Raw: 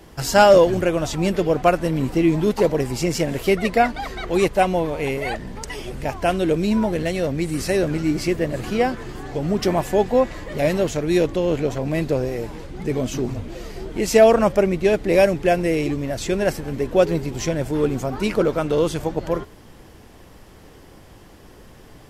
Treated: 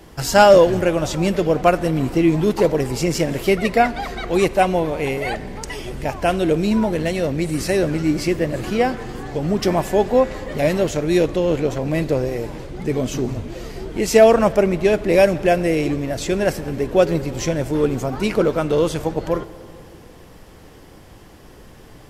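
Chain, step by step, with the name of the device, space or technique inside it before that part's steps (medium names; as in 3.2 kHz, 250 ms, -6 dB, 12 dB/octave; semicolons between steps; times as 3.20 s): saturated reverb return (on a send at -14 dB: reverberation RT60 2.5 s, pre-delay 3 ms + saturation -16 dBFS, distortion -11 dB); on the sum: trim +1.5 dB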